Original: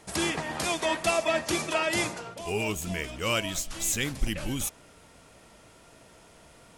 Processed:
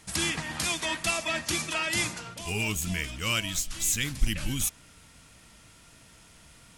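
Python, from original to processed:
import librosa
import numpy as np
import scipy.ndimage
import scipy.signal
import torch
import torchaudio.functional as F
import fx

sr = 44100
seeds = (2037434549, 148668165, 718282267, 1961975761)

p1 = fx.peak_eq(x, sr, hz=570.0, db=-12.5, octaves=2.0)
p2 = fx.notch(p1, sr, hz=390.0, q=12.0)
p3 = fx.rider(p2, sr, range_db=5, speed_s=0.5)
p4 = p2 + F.gain(torch.from_numpy(p3), 2.0).numpy()
y = F.gain(torch.from_numpy(p4), -4.0).numpy()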